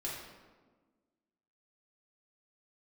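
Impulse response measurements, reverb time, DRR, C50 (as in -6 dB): 1.4 s, -5.5 dB, 1.5 dB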